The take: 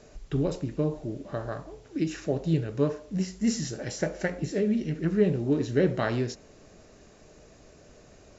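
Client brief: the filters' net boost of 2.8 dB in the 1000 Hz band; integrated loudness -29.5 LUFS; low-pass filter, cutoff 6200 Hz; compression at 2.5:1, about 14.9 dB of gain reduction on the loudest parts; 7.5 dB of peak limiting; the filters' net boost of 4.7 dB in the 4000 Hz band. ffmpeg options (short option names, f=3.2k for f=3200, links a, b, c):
-af "lowpass=6.2k,equalizer=f=1k:t=o:g=3.5,equalizer=f=4k:t=o:g=7.5,acompressor=threshold=-41dB:ratio=2.5,volume=12dB,alimiter=limit=-18.5dB:level=0:latency=1"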